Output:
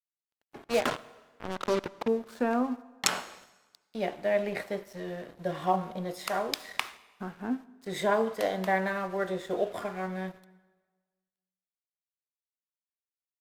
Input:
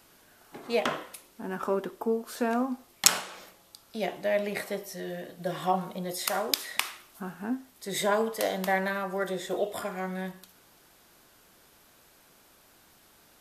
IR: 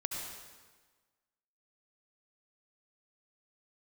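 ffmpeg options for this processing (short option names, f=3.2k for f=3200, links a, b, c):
-filter_complex "[0:a]lowpass=f=2.5k:p=1,asettb=1/sr,asplit=3[a][b][c];[a]atrim=end=0.644[d];[b]atrim=start=0.64:end=2.08,asetpts=PTS-STARTPTS,afade=t=in:d=0.004:c=qsin,afade=t=out:st=1.436:d=0.004:c=qsin,acrusher=bits=4:mix=0:aa=0.5[e];[c]atrim=start=2.076[f];[d][e]acrossfade=d=0.004:c1=hsin:c2=qsin[g];[g][f]acrossfade=d=0.004:c1=qsin:c2=hsin,aeval=exprs='sgn(val(0))*max(abs(val(0))-0.00299,0)':c=same,asplit=2[h][i];[1:a]atrim=start_sample=2205[j];[i][j]afir=irnorm=-1:irlink=0,volume=-18.5dB[k];[h][k]amix=inputs=2:normalize=0"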